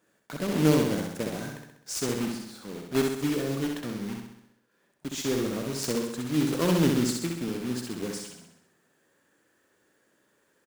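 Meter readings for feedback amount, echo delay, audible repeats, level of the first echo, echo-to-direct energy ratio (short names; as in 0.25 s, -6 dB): 55%, 65 ms, 7, -3.5 dB, -2.0 dB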